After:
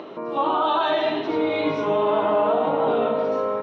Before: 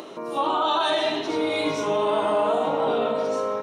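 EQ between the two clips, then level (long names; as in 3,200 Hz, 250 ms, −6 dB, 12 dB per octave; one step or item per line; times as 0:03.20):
high-frequency loss of the air 300 metres
+3.0 dB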